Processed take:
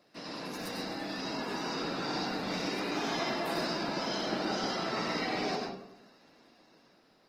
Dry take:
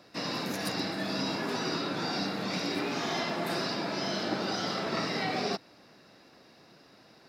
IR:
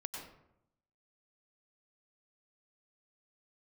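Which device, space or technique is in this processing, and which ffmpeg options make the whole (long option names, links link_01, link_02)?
far-field microphone of a smart speaker: -filter_complex "[1:a]atrim=start_sample=2205[link_01];[0:a][link_01]afir=irnorm=-1:irlink=0,highpass=150,dynaudnorm=framelen=300:gausssize=11:maxgain=4dB,volume=-4dB" -ar 48000 -c:a libopus -b:a 20k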